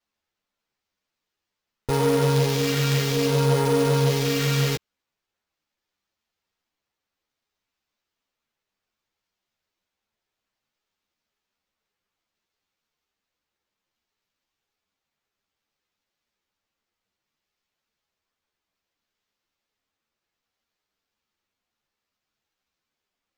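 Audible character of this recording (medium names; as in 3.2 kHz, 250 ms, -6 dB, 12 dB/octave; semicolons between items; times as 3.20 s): phasing stages 2, 0.61 Hz, lowest notch 800–2800 Hz; aliases and images of a low sample rate 10 kHz, jitter 0%; a shimmering, thickened sound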